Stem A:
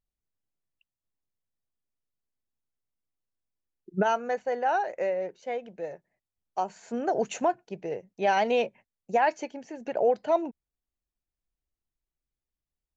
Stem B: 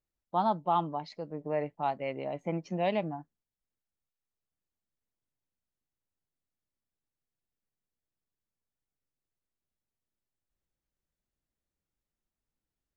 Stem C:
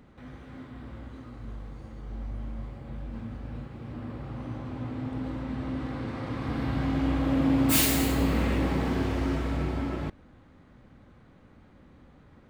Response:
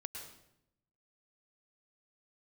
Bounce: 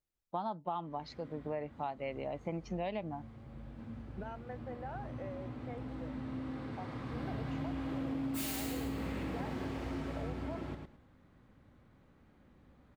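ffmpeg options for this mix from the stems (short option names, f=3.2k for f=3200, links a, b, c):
-filter_complex "[0:a]acompressor=threshold=-27dB:ratio=6,lowpass=2.7k,adelay=200,volume=-14.5dB[a];[1:a]volume=-2dB,asplit=2[b][c];[2:a]adelay=650,volume=-9.5dB,asplit=2[d][e];[e]volume=-5.5dB[f];[c]apad=whole_len=579631[g];[d][g]sidechaincompress=threshold=-32dB:ratio=8:attack=47:release=1220[h];[f]aecho=0:1:107|214|321:1|0.19|0.0361[i];[a][b][h][i]amix=inputs=4:normalize=0,acompressor=threshold=-34dB:ratio=6"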